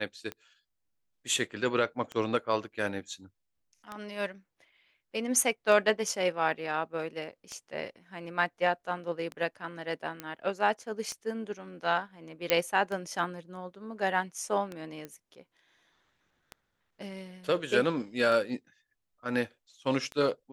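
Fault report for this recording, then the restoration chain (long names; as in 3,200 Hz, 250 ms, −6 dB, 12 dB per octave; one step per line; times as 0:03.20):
scratch tick 33 1/3 rpm −23 dBFS
0:10.20: click −20 dBFS
0:12.50: click −8 dBFS
0:15.05: click −26 dBFS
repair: click removal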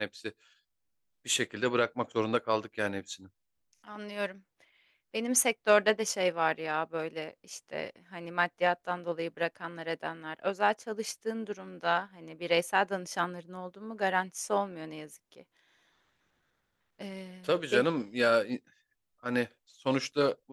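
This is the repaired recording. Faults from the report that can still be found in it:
none of them is left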